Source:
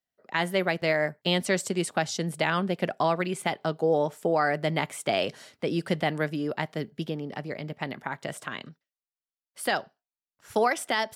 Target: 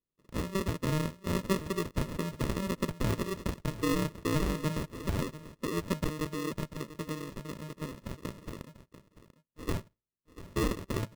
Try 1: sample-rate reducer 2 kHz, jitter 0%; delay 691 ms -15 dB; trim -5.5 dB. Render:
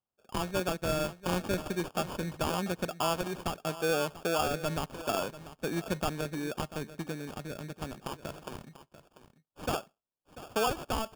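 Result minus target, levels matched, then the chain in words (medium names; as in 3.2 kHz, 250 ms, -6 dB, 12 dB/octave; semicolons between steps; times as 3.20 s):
sample-rate reducer: distortion -20 dB
sample-rate reducer 770 Hz, jitter 0%; delay 691 ms -15 dB; trim -5.5 dB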